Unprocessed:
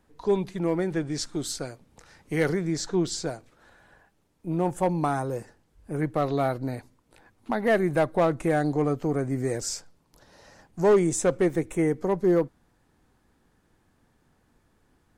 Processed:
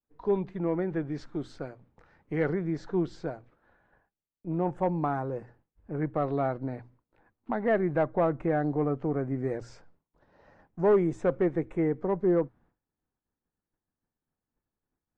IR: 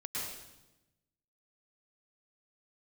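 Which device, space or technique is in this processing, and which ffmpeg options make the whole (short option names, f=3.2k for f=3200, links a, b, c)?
hearing-loss simulation: -filter_complex "[0:a]bandreject=f=60:t=h:w=6,bandreject=f=120:t=h:w=6,asettb=1/sr,asplit=3[a][b][c];[a]atrim=end=8.034[d];[b]atrim=start=8.03:end=8.98,asetpts=PTS-STARTPTS,afade=t=in:d=0.004:c=qsin,afade=t=out:st=0.946:d=0.004:c=qsin,highshelf=f=4.2k:g=-5[e];[c]atrim=start=8.976[f];[d][e]acrossfade=d=0.004:c1=hsin:c2=qsin[g];[g][f]acrossfade=d=0.004:c1=qsin:c2=hsin,lowpass=1.8k,agate=range=-33dB:threshold=-52dB:ratio=3:detection=peak,volume=-3dB"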